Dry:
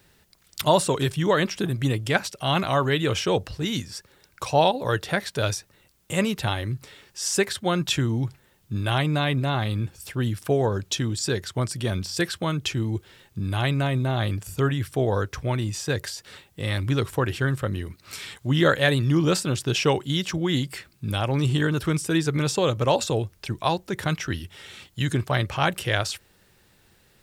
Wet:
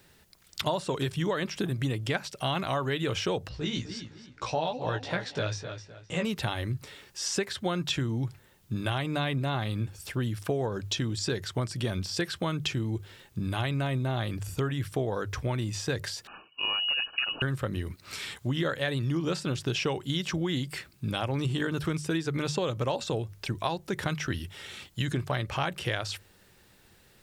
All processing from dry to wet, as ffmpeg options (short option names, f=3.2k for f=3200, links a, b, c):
-filter_complex "[0:a]asettb=1/sr,asplit=3[a][b][c];[a]atrim=end=3.494[d];[b]atrim=start=3.49:end=6.25,asetpts=PTS-STARTPTS,afade=t=in:d=0.004:c=qsin,afade=t=out:st=2.756:d=0.004:c=qsin,lowpass=f=6.4k:w=0.5412,lowpass=f=6.4k:w=1.3066,asplit=2[e][f];[f]adelay=257,lowpass=f=4k:p=1,volume=-11dB,asplit=2[g][h];[h]adelay=257,lowpass=f=4k:p=1,volume=0.32,asplit=2[i][j];[j]adelay=257,lowpass=f=4k:p=1,volume=0.32[k];[e][g][i][k]amix=inputs=4:normalize=0,atrim=end_sample=121716,flanger=delay=16:depth=3:speed=2.3[l];[c]atrim=start=6.246[m];[d][l]acrossfade=d=0.004:c1=hsin:c2=qsin[n];[n][m]acrossfade=d=0.004:c1=qsin:c2=hsin,asettb=1/sr,asplit=3[o][p][q];[o]atrim=end=16.274[r];[p]atrim=start=16.27:end=17.42,asetpts=PTS-STARTPTS,afade=t=in:d=0.004:c=qsin,afade=t=out:st=1.146:d=0.004:c=qsin,asuperstop=centerf=960:order=20:qfactor=2.3,asoftclip=type=hard:threshold=-17.5dB,lowpass=f=2.6k:t=q:w=0.5098,lowpass=f=2.6k:t=q:w=0.6013,lowpass=f=2.6k:t=q:w=0.9,lowpass=f=2.6k:t=q:w=2.563,afreqshift=-3000[s];[q]atrim=start=17.416[t];[r][s]acrossfade=d=0.004:c1=hsin:c2=qsin[u];[u][t]acrossfade=d=0.004:c1=qsin:c2=hsin,acrossover=split=6100[v][w];[w]acompressor=threshold=-44dB:ratio=4:attack=1:release=60[x];[v][x]amix=inputs=2:normalize=0,bandreject=f=50:t=h:w=6,bandreject=f=100:t=h:w=6,bandreject=f=150:t=h:w=6,acompressor=threshold=-26dB:ratio=6"